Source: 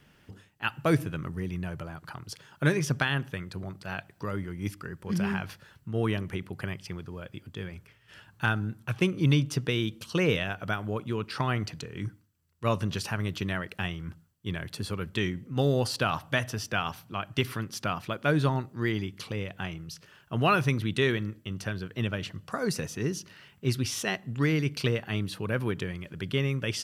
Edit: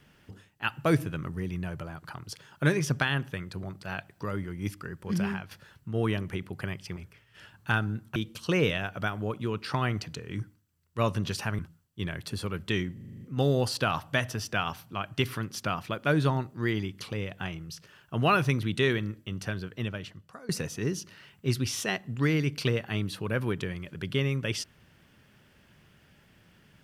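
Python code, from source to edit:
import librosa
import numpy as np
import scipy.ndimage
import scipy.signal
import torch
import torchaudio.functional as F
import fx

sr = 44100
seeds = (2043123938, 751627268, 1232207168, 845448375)

y = fx.edit(x, sr, fx.fade_out_to(start_s=5.21, length_s=0.3, floor_db=-11.0),
    fx.cut(start_s=6.97, length_s=0.74),
    fx.cut(start_s=8.9, length_s=0.92),
    fx.cut(start_s=13.25, length_s=0.81),
    fx.stutter(start_s=15.4, slice_s=0.04, count=8),
    fx.fade_out_to(start_s=21.74, length_s=0.94, floor_db=-21.0), tone=tone)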